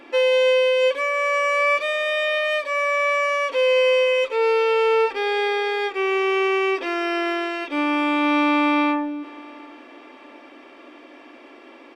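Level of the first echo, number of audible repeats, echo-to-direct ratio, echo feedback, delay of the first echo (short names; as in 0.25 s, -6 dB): -22.5 dB, 2, -22.0 dB, 39%, 0.726 s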